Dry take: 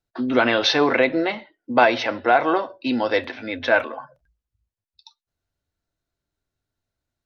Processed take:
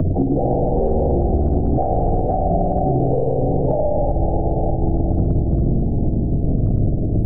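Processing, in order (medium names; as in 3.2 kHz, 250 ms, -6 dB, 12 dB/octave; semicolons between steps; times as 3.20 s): one-sided wavefolder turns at -11 dBFS; wind noise 110 Hz -23 dBFS; in parallel at -2 dB: upward compressor, threshold -20 dBFS; on the sum: steep low-pass 1.3 kHz 96 dB/octave; band-stop 400 Hz, Q 13; on a send: echo that smears into a reverb 460 ms, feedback 53%, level -11.5 dB; on the sum: spring tank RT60 1.9 s, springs 53 ms, chirp 60 ms, DRR -3 dB; peak limiter -7.5 dBFS, peak gain reduction 11 dB; formant-preserving pitch shift -11 st; three bands compressed up and down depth 100%; trim -2 dB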